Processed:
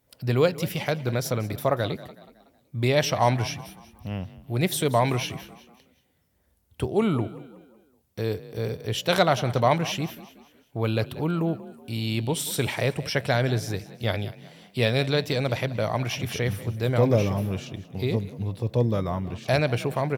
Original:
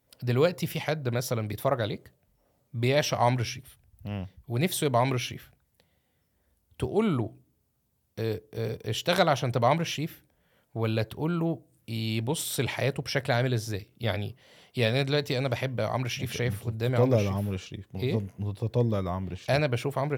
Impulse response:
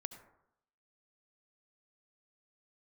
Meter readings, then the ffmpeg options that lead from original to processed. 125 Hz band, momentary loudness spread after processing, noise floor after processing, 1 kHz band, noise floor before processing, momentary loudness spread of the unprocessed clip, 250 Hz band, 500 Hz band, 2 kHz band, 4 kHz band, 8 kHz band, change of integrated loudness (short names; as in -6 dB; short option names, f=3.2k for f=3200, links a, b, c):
+2.5 dB, 12 LU, -66 dBFS, +2.5 dB, -73 dBFS, 12 LU, +2.5 dB, +2.5 dB, +2.5 dB, +2.5 dB, +2.5 dB, +2.5 dB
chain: -filter_complex "[0:a]asplit=5[a][b][c][d][e];[b]adelay=186,afreqshift=33,volume=-17dB[f];[c]adelay=372,afreqshift=66,volume=-24.3dB[g];[d]adelay=558,afreqshift=99,volume=-31.7dB[h];[e]adelay=744,afreqshift=132,volume=-39dB[i];[a][f][g][h][i]amix=inputs=5:normalize=0,volume=2.5dB"